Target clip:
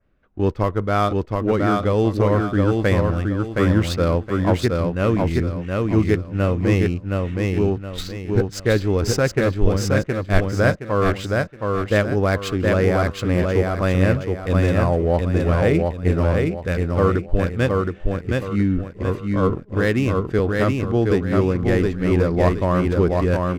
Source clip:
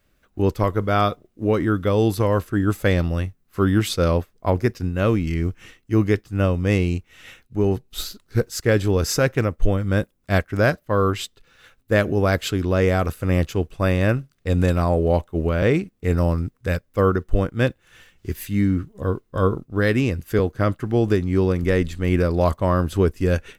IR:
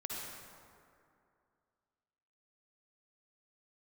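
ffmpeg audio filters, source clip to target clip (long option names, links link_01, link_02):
-af "adynamicequalizer=threshold=0.00501:dfrequency=3300:dqfactor=1.8:tfrequency=3300:tqfactor=1.8:attack=5:release=100:ratio=0.375:range=2:mode=cutabove:tftype=bell,adynamicsmooth=sensitivity=6.5:basefreq=2100,aecho=1:1:719|1438|2157|2876:0.708|0.241|0.0818|0.0278"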